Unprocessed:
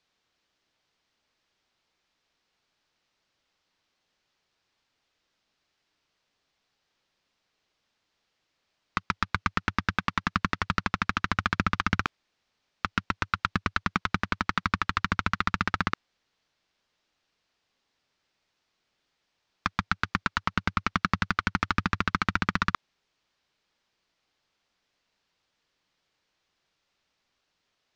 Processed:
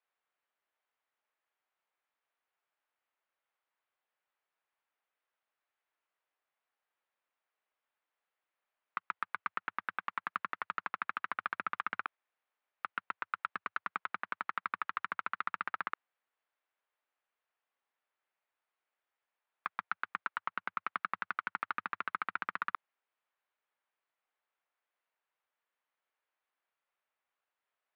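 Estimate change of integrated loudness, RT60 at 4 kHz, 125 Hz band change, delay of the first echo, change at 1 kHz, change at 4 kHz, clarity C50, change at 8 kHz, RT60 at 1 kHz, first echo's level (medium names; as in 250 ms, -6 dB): -10.0 dB, no reverb, under -30 dB, no echo, -8.0 dB, -18.5 dB, no reverb, under -30 dB, no reverb, no echo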